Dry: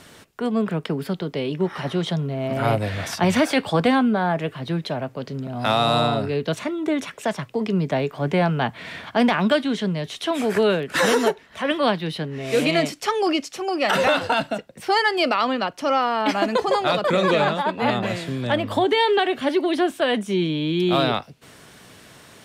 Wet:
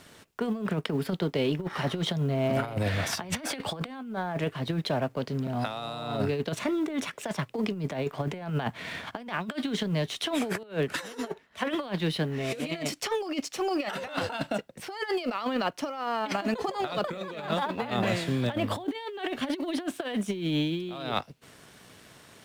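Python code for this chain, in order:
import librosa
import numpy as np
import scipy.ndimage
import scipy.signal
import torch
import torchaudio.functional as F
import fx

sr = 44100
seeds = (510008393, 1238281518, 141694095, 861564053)

y = fx.law_mismatch(x, sr, coded='A')
y = fx.over_compress(y, sr, threshold_db=-25.0, ratio=-0.5)
y = fx.band_widen(y, sr, depth_pct=70, at=(10.63, 11.75))
y = y * librosa.db_to_amplitude(-4.0)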